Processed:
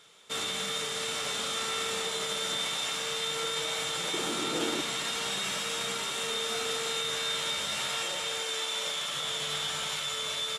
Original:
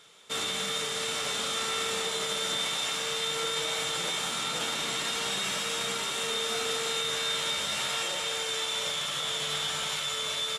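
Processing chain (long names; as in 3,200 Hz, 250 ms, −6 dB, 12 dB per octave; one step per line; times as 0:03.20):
0:04.13–0:04.81: hollow resonant body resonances 330 Hz, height 18 dB, ringing for 35 ms
0:08.41–0:09.13: high-pass filter 190 Hz 12 dB per octave
level −1.5 dB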